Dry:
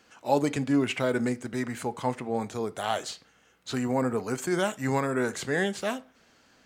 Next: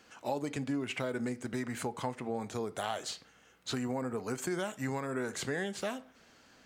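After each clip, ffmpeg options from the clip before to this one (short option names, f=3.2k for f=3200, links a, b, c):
-af "acompressor=threshold=-32dB:ratio=5"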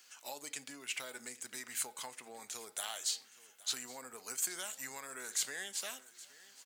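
-af "aderivative,aecho=1:1:819|1638|2457:0.106|0.0455|0.0196,volume=7.5dB"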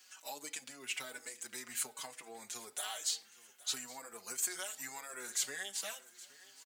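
-filter_complex "[0:a]asplit=2[a][b];[b]adelay=5,afreqshift=1.1[c];[a][c]amix=inputs=2:normalize=1,volume=3dB"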